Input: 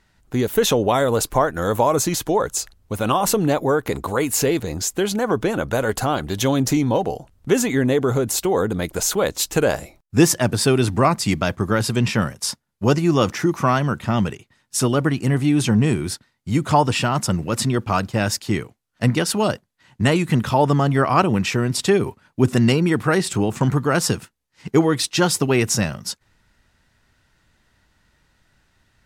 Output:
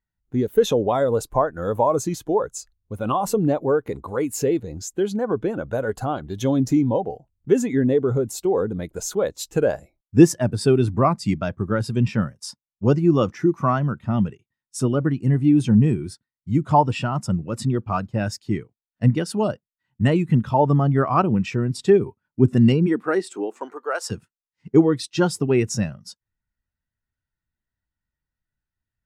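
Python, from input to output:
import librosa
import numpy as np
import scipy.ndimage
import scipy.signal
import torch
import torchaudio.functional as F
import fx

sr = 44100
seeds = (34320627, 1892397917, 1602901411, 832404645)

y = fx.highpass(x, sr, hz=fx.line((22.86, 180.0), (24.1, 530.0)), slope=24, at=(22.86, 24.1), fade=0.02)
y = fx.spectral_expand(y, sr, expansion=1.5)
y = F.gain(torch.from_numpy(y), 1.0).numpy()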